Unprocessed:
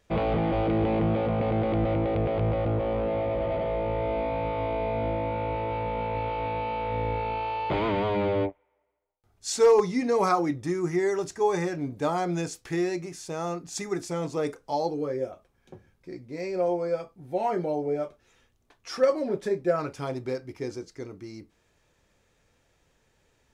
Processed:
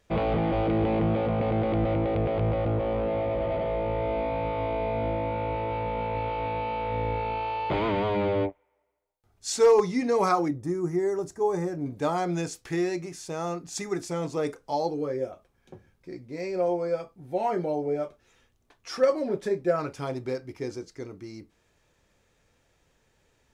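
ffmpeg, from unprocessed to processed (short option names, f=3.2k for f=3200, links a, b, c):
-filter_complex "[0:a]asettb=1/sr,asplit=3[a][b][c];[a]atrim=end=10.484[d];[b]atrim=start=10.48:end=11.86,asetpts=PTS-STARTPTS,afade=t=in:d=0.004:c=qsin,afade=t=out:st=1.376:d=0.004:c=qsin,equalizer=f=3k:t=o:w=2:g=-14.5[e];[c]atrim=start=11.856[f];[d][e]acrossfade=d=0.004:c1=hsin:c2=qsin[g];[g][f]acrossfade=d=0.004:c1=qsin:c2=hsin"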